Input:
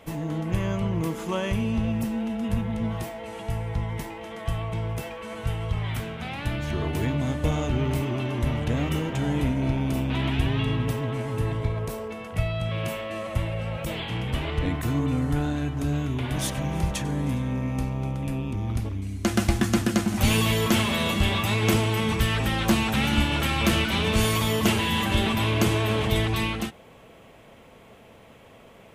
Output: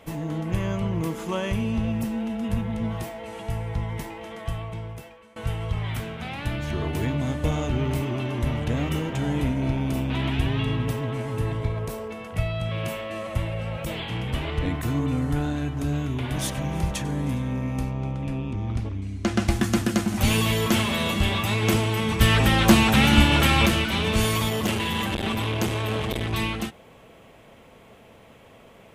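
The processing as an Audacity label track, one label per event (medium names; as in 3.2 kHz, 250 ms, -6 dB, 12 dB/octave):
4.280000	5.360000	fade out, to -21.5 dB
17.910000	19.480000	distance through air 62 m
22.210000	23.660000	gain +6 dB
24.490000	26.330000	transformer saturation saturates under 560 Hz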